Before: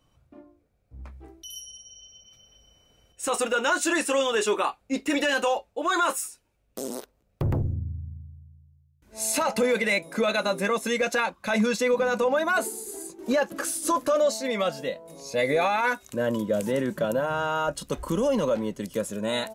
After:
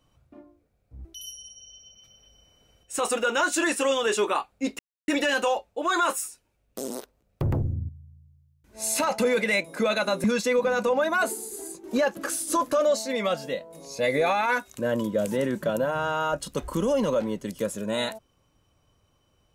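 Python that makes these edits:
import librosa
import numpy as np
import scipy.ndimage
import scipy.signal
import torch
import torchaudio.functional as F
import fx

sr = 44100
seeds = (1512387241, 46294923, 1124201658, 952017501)

y = fx.edit(x, sr, fx.cut(start_s=1.05, length_s=0.29),
    fx.insert_silence(at_s=5.08, length_s=0.29),
    fx.cut(start_s=7.89, length_s=0.38),
    fx.cut(start_s=10.62, length_s=0.97), tone=tone)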